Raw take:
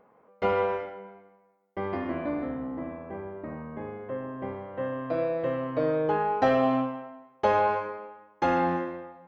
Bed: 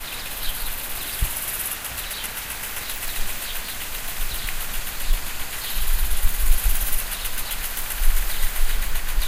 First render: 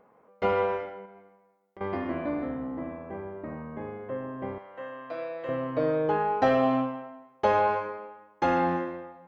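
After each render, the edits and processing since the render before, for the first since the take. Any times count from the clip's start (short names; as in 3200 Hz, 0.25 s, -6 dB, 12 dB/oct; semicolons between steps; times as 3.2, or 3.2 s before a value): 1.05–1.81 compressor, threshold -45 dBFS; 4.58–5.49 HPF 1200 Hz 6 dB/oct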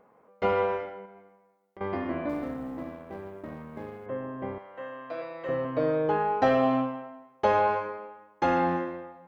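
2.29–4.06 G.711 law mismatch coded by A; 5.2–5.65 doubler 13 ms -3.5 dB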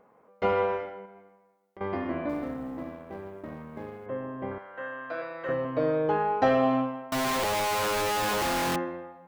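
4.51–5.53 bell 1500 Hz +11.5 dB 0.39 oct; 7.12–8.76 infinite clipping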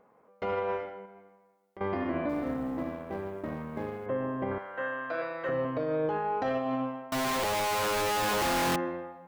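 vocal rider within 4 dB 2 s; limiter -22.5 dBFS, peak gain reduction 10.5 dB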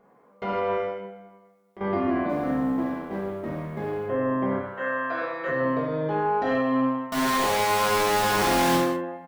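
doubler 46 ms -13 dB; non-linear reverb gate 0.23 s falling, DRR -3 dB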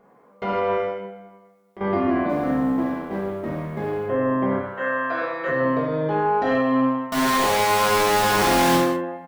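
gain +3.5 dB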